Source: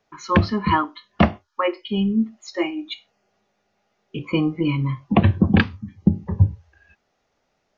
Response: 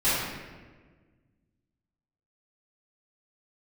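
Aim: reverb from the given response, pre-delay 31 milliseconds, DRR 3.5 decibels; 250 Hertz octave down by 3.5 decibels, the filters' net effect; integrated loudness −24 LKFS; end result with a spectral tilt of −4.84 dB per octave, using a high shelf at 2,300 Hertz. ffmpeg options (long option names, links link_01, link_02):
-filter_complex "[0:a]equalizer=frequency=250:width_type=o:gain=-5,highshelf=frequency=2300:gain=8.5,asplit=2[link_01][link_02];[1:a]atrim=start_sample=2205,adelay=31[link_03];[link_02][link_03]afir=irnorm=-1:irlink=0,volume=-18.5dB[link_04];[link_01][link_04]amix=inputs=2:normalize=0,volume=-3dB"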